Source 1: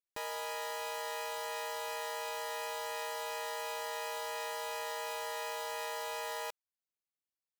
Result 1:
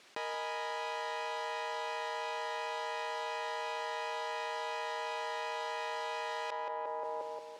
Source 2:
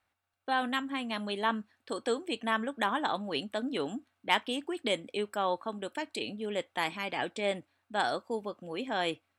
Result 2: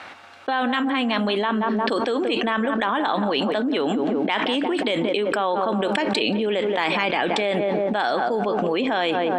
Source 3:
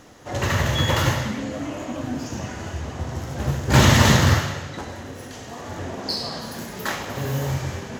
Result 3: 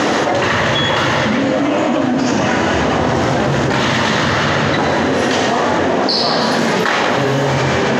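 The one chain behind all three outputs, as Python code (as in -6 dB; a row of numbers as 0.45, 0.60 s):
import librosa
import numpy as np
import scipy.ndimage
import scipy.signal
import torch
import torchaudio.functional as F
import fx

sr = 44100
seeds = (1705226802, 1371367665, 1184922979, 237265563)

y = fx.bandpass_edges(x, sr, low_hz=220.0, high_hz=4300.0)
y = fx.echo_filtered(y, sr, ms=177, feedback_pct=57, hz=1000.0, wet_db=-13.0)
y = fx.env_flatten(y, sr, amount_pct=100)
y = y * librosa.db_to_amplitude(1.0)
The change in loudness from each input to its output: +1.0, +11.0, +8.0 LU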